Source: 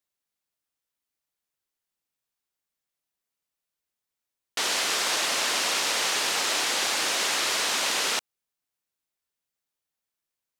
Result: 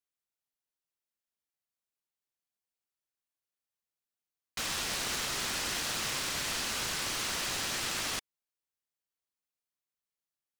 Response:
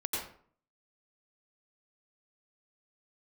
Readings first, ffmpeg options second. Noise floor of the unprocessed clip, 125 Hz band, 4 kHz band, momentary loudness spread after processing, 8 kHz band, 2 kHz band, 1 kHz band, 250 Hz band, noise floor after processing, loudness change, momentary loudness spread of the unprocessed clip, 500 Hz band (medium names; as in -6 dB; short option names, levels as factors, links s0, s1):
under -85 dBFS, no reading, -8.5 dB, 3 LU, -7.5 dB, -8.5 dB, -9.5 dB, -3.0 dB, under -85 dBFS, -8.0 dB, 3 LU, -9.5 dB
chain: -af "bandreject=f=2900:w=24,aeval=exprs='val(0)*sgn(sin(2*PI*670*n/s))':c=same,volume=0.398"